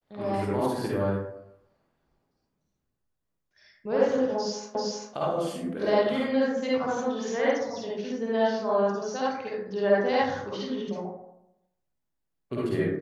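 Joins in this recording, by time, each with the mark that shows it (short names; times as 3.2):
4.75 repeat of the last 0.39 s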